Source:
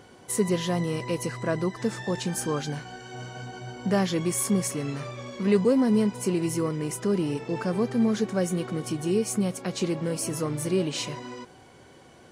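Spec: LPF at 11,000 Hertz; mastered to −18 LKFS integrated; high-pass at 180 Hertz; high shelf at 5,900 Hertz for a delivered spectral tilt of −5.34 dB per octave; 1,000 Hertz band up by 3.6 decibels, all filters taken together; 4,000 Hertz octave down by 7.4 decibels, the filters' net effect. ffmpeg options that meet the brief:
ffmpeg -i in.wav -af "highpass=180,lowpass=11000,equalizer=frequency=1000:width_type=o:gain=5,equalizer=frequency=4000:width_type=o:gain=-9,highshelf=frequency=5900:gain=-4.5,volume=10dB" out.wav

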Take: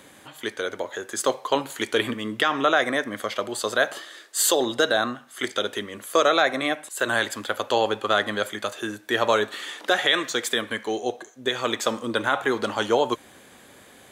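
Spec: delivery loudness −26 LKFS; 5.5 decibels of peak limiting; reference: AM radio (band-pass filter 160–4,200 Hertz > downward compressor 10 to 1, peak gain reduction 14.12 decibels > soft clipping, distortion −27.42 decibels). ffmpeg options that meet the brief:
ffmpeg -i in.wav -af "alimiter=limit=-11.5dB:level=0:latency=1,highpass=160,lowpass=4200,acompressor=threshold=-31dB:ratio=10,asoftclip=threshold=-18dB,volume=10.5dB" out.wav

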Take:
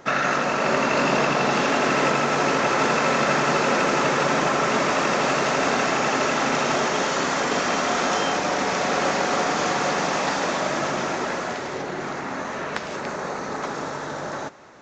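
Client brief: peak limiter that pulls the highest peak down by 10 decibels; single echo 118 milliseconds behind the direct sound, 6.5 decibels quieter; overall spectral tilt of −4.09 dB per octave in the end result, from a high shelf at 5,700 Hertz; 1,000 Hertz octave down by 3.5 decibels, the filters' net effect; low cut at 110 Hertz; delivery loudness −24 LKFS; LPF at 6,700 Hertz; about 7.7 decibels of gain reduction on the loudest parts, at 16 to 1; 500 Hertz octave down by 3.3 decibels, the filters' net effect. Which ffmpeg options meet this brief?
ffmpeg -i in.wav -af "highpass=110,lowpass=6700,equalizer=frequency=500:width_type=o:gain=-3,equalizer=frequency=1000:width_type=o:gain=-3.5,highshelf=frequency=5700:gain=-6.5,acompressor=threshold=-27dB:ratio=16,alimiter=limit=-23dB:level=0:latency=1,aecho=1:1:118:0.473,volume=7.5dB" out.wav

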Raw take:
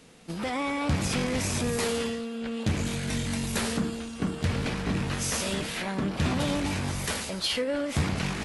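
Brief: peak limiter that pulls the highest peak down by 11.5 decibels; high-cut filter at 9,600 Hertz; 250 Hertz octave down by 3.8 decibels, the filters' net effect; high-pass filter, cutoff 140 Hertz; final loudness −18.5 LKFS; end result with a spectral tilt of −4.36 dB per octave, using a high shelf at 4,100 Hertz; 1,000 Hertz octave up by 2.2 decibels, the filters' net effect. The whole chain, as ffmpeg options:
ffmpeg -i in.wav -af "highpass=140,lowpass=9600,equalizer=frequency=250:width_type=o:gain=-4,equalizer=frequency=1000:width_type=o:gain=3.5,highshelf=frequency=4100:gain=-6.5,volume=18dB,alimiter=limit=-10dB:level=0:latency=1" out.wav

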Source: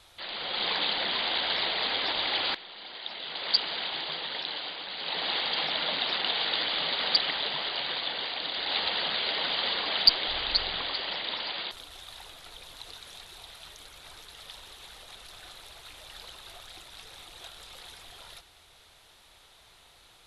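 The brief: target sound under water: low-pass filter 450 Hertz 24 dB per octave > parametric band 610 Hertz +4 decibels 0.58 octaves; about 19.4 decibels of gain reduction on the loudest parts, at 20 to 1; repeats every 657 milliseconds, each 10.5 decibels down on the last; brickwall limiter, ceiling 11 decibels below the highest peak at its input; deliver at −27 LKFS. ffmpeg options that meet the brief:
ffmpeg -i in.wav -af "acompressor=threshold=-32dB:ratio=20,alimiter=level_in=4.5dB:limit=-24dB:level=0:latency=1,volume=-4.5dB,lowpass=frequency=450:width=0.5412,lowpass=frequency=450:width=1.3066,equalizer=frequency=610:width_type=o:width=0.58:gain=4,aecho=1:1:657|1314|1971:0.299|0.0896|0.0269,volume=29dB" out.wav

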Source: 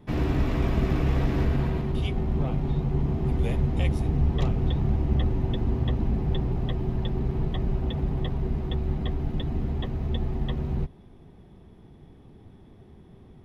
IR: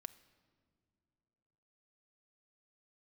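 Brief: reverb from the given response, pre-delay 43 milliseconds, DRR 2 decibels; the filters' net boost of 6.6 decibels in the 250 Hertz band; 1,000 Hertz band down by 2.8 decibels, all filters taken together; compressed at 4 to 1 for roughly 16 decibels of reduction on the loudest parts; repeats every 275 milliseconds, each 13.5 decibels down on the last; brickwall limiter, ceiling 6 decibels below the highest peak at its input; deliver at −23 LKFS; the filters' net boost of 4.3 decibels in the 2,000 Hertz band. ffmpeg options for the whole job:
-filter_complex "[0:a]equalizer=frequency=250:width_type=o:gain=9,equalizer=frequency=1000:width_type=o:gain=-6,equalizer=frequency=2000:width_type=o:gain=6.5,acompressor=threshold=-37dB:ratio=4,alimiter=level_in=7dB:limit=-24dB:level=0:latency=1,volume=-7dB,aecho=1:1:275|550:0.211|0.0444,asplit=2[link_01][link_02];[1:a]atrim=start_sample=2205,adelay=43[link_03];[link_02][link_03]afir=irnorm=-1:irlink=0,volume=3.5dB[link_04];[link_01][link_04]amix=inputs=2:normalize=0,volume=15dB"

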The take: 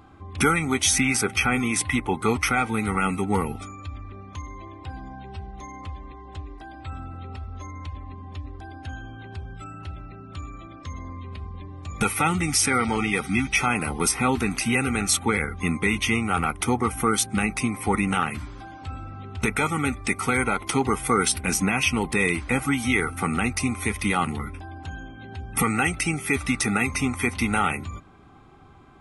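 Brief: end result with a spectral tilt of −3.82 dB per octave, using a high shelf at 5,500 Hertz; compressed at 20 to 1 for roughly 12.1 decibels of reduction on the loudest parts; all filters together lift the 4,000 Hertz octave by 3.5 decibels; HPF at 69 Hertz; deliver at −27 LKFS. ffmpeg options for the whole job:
ffmpeg -i in.wav -af "highpass=69,equalizer=frequency=4000:width_type=o:gain=6.5,highshelf=frequency=5500:gain=-4,acompressor=threshold=-28dB:ratio=20,volume=7dB" out.wav

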